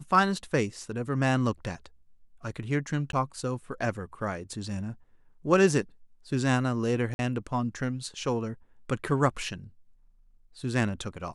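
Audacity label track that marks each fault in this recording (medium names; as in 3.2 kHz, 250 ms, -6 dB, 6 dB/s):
3.120000	3.130000	dropout 12 ms
7.140000	7.190000	dropout 51 ms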